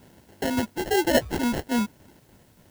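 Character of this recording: phasing stages 2, 1.1 Hz, lowest notch 520–1900 Hz; aliases and images of a low sample rate 1200 Hz, jitter 0%; tremolo saw down 3.5 Hz, depth 55%; a quantiser's noise floor 12-bit, dither triangular

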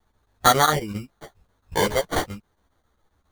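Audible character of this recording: a quantiser's noise floor 12-bit, dither triangular; chopped level 7.4 Hz, depth 65%, duty 80%; aliases and images of a low sample rate 2600 Hz, jitter 0%; a shimmering, thickened sound

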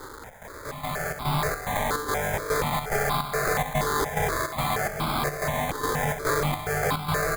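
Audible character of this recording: a quantiser's noise floor 8-bit, dither triangular; chopped level 2.4 Hz, depth 60%, duty 70%; aliases and images of a low sample rate 2800 Hz, jitter 0%; notches that jump at a steady rate 4.2 Hz 680–1800 Hz

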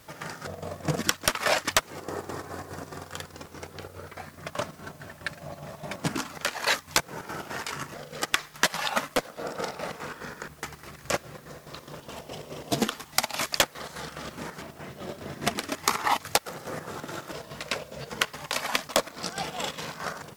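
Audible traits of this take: chopped level 4.8 Hz, depth 60%, duty 60%; a quantiser's noise floor 10-bit, dither triangular; MP3

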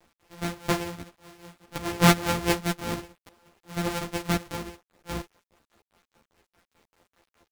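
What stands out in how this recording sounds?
a buzz of ramps at a fixed pitch in blocks of 256 samples; tremolo triangle 4.9 Hz, depth 75%; a quantiser's noise floor 10-bit, dither none; a shimmering, thickened sound

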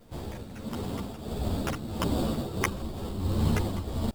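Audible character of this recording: aliases and images of a low sample rate 4100 Hz, jitter 0%; tremolo triangle 1.5 Hz, depth 70%; a quantiser's noise floor 12-bit, dither triangular; a shimmering, thickened sound

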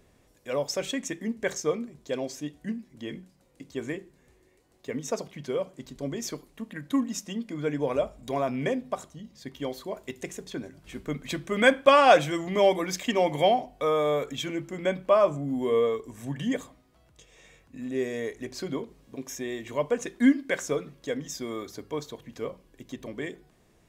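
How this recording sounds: noise floor -63 dBFS; spectral tilt -4.5 dB/oct

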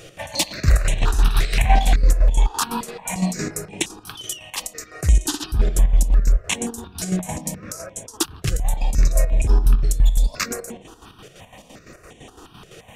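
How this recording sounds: chopped level 5.9 Hz, depth 60%, duty 55%; notches that jump at a steady rate 5.7 Hz 250–4800 Hz

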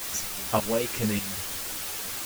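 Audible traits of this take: tremolo saw up 1.7 Hz, depth 85%; a quantiser's noise floor 6-bit, dither triangular; a shimmering, thickened sound

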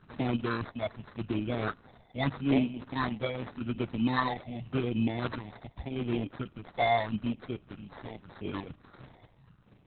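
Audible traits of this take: phasing stages 6, 0.84 Hz, lowest notch 330–1100 Hz; aliases and images of a low sample rate 2800 Hz, jitter 0%; Opus

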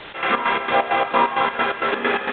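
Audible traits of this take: a quantiser's noise floor 6-bit, dither triangular; chopped level 4.4 Hz, depth 65%, duty 55%; µ-law

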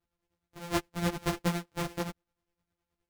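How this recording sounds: a buzz of ramps at a fixed pitch in blocks of 256 samples; tremolo triangle 9.7 Hz, depth 75%; a shimmering, thickened sound

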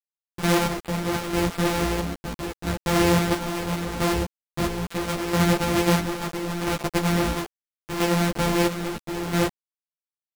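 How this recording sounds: a buzz of ramps at a fixed pitch in blocks of 256 samples; chopped level 0.75 Hz, depth 60%, duty 50%; a quantiser's noise floor 6-bit, dither none; a shimmering, thickened sound

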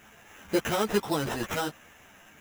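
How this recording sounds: aliases and images of a low sample rate 4500 Hz, jitter 0%; a shimmering, thickened sound

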